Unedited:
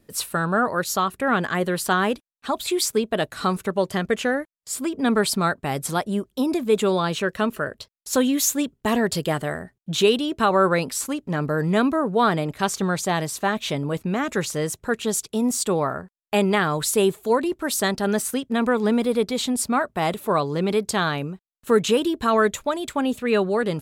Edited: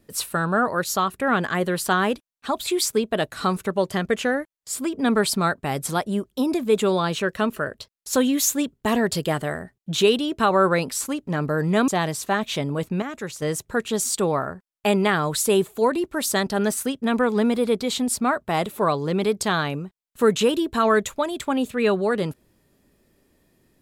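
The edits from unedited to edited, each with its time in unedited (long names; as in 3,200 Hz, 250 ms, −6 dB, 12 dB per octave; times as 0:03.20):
0:11.88–0:13.02: remove
0:14.16–0:14.56: clip gain −7.5 dB
0:15.18–0:15.52: remove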